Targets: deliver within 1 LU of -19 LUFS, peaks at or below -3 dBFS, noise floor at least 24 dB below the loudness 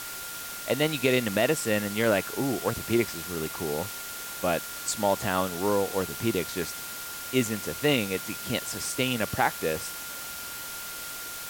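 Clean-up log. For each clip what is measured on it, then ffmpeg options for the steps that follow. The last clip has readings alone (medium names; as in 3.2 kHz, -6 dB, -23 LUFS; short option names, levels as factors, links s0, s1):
steady tone 1.4 kHz; tone level -42 dBFS; noise floor -38 dBFS; noise floor target -53 dBFS; loudness -28.5 LUFS; peak level -9.0 dBFS; loudness target -19.0 LUFS
-> -af "bandreject=f=1400:w=30"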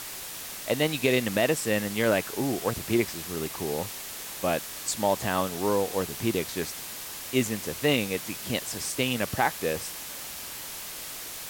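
steady tone not found; noise floor -39 dBFS; noise floor target -53 dBFS
-> -af "afftdn=nr=14:nf=-39"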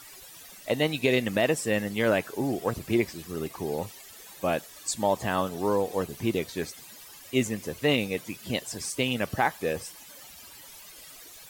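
noise floor -48 dBFS; noise floor target -53 dBFS
-> -af "afftdn=nr=6:nf=-48"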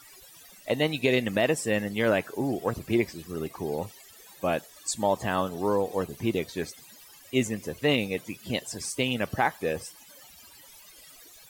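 noise floor -52 dBFS; noise floor target -53 dBFS
-> -af "afftdn=nr=6:nf=-52"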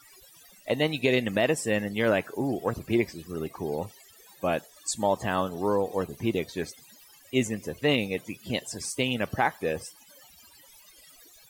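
noise floor -55 dBFS; loudness -28.5 LUFS; peak level -10.0 dBFS; loudness target -19.0 LUFS
-> -af "volume=2.99,alimiter=limit=0.708:level=0:latency=1"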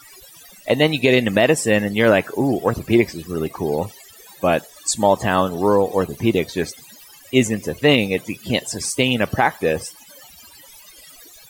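loudness -19.0 LUFS; peak level -3.0 dBFS; noise floor -46 dBFS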